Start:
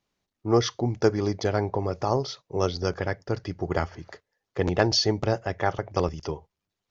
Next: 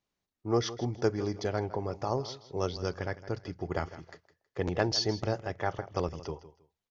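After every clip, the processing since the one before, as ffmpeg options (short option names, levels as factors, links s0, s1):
-af "aecho=1:1:160|320:0.168|0.0386,volume=0.473"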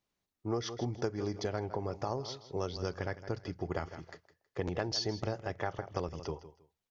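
-af "acompressor=threshold=0.0316:ratio=6"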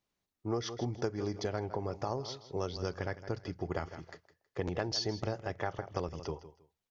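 -af anull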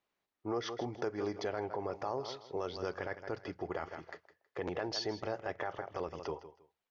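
-af "bass=f=250:g=-7,treble=f=4000:g=-12,alimiter=level_in=1.5:limit=0.0631:level=0:latency=1:release=17,volume=0.668,lowshelf=f=260:g=-7,volume=1.58"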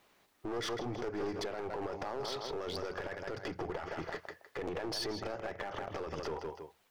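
-af "acompressor=threshold=0.00447:ratio=4,alimiter=level_in=10:limit=0.0631:level=0:latency=1:release=29,volume=0.1,aeval=exprs='clip(val(0),-1,0.00168)':c=same,volume=7.94"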